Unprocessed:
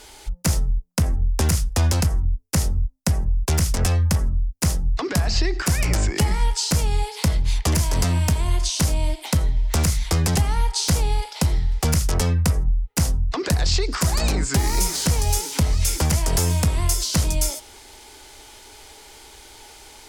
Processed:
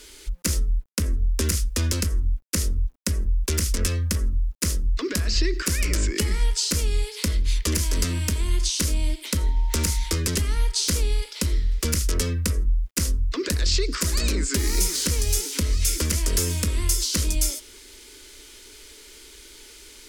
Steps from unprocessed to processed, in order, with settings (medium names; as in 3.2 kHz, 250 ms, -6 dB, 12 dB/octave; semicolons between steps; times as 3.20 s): 9.37–10.14 s: whistle 920 Hz -29 dBFS; static phaser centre 320 Hz, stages 4; bit crusher 11-bit